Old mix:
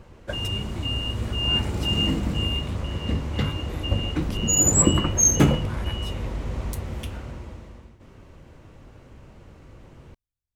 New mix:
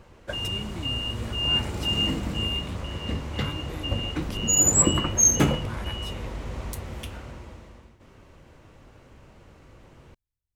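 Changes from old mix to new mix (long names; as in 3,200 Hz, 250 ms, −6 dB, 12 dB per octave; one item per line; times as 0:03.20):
background: add low-shelf EQ 340 Hz −8 dB
master: add low-shelf EQ 210 Hz +3 dB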